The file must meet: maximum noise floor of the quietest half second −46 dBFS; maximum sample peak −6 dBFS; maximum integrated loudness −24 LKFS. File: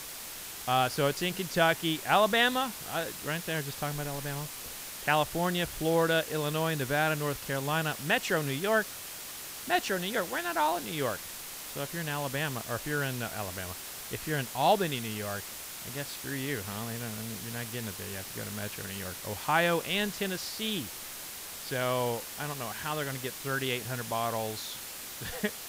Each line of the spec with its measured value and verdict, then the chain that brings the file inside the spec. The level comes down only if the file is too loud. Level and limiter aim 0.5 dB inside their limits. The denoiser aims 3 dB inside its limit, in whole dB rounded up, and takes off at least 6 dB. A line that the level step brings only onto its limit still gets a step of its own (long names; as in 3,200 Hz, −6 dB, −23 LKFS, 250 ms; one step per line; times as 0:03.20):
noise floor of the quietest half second −42 dBFS: out of spec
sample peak −12.0 dBFS: in spec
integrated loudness −31.5 LKFS: in spec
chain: broadband denoise 7 dB, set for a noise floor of −42 dBFS